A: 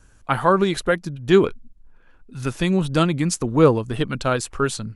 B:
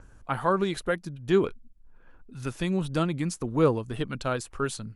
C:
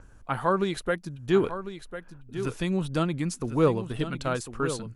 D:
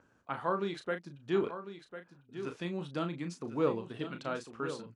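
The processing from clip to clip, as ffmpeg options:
-filter_complex "[0:a]adynamicequalizer=threshold=0.00355:dfrequency=9900:dqfactor=5.3:tfrequency=9900:tqfactor=5.3:attack=5:release=100:ratio=0.375:range=2.5:mode=boostabove:tftype=bell,acrossover=split=1600[a][b];[a]acompressor=mode=upward:threshold=-34dB:ratio=2.5[c];[b]alimiter=limit=-18dB:level=0:latency=1:release=127[d];[c][d]amix=inputs=2:normalize=0,volume=-7.5dB"
-af "aecho=1:1:1049:0.282"
-filter_complex "[0:a]highpass=180,lowpass=5.3k,asplit=2[a][b];[b]adelay=35,volume=-8dB[c];[a][c]amix=inputs=2:normalize=0,volume=-8dB"

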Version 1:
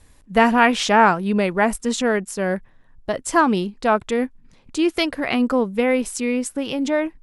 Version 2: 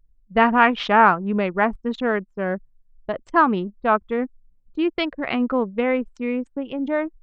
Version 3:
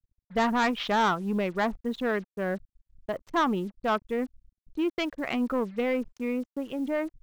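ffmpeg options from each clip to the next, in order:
-af "anlmdn=631,lowpass=f=3.8k:w=0.5412,lowpass=f=3.8k:w=1.3066,adynamicequalizer=threshold=0.0282:dfrequency=1200:dqfactor=2.1:tfrequency=1200:tqfactor=2.1:attack=5:release=100:ratio=0.375:range=3:mode=boostabove:tftype=bell,volume=-2.5dB"
-af "aresample=16000,asoftclip=type=tanh:threshold=-14.5dB,aresample=44100,acrusher=bits=7:mix=0:aa=0.5,volume=-4.5dB"

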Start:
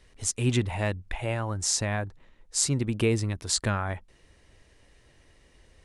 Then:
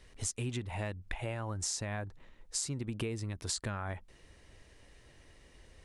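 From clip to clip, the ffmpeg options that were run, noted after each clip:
-af "acompressor=threshold=-33dB:ratio=10"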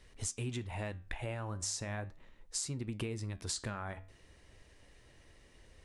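-af "flanger=delay=8.8:depth=7.1:regen=-79:speed=0.37:shape=sinusoidal,volume=2.5dB"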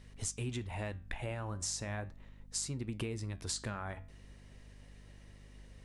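-af "aeval=exprs='val(0)+0.002*(sin(2*PI*50*n/s)+sin(2*PI*2*50*n/s)/2+sin(2*PI*3*50*n/s)/3+sin(2*PI*4*50*n/s)/4+sin(2*PI*5*50*n/s)/5)':c=same"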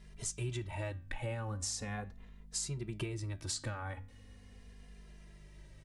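-filter_complex "[0:a]asplit=2[a][b];[b]adelay=2.5,afreqshift=-0.39[c];[a][c]amix=inputs=2:normalize=1,volume=2.5dB"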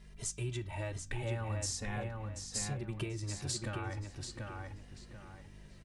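-filter_complex "[0:a]asplit=2[a][b];[b]adelay=736,lowpass=f=4.4k:p=1,volume=-3.5dB,asplit=2[c][d];[d]adelay=736,lowpass=f=4.4k:p=1,volume=0.34,asplit=2[e][f];[f]adelay=736,lowpass=f=4.4k:p=1,volume=0.34,asplit=2[g][h];[h]adelay=736,lowpass=f=4.4k:p=1,volume=0.34[i];[a][c][e][g][i]amix=inputs=5:normalize=0"

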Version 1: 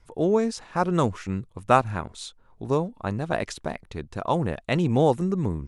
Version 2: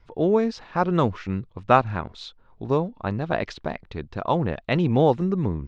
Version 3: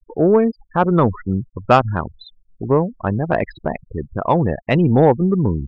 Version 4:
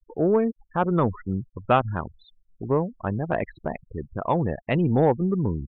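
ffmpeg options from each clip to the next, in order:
-af "lowpass=f=4.7k:w=0.5412,lowpass=f=4.7k:w=1.3066,volume=1.5dB"
-af "aemphasis=mode=reproduction:type=cd,afftfilt=real='re*gte(hypot(re,im),0.0355)':imag='im*gte(hypot(re,im),0.0355)':win_size=1024:overlap=0.75,acontrast=78"
-af "aresample=8000,aresample=44100,volume=-7dB"

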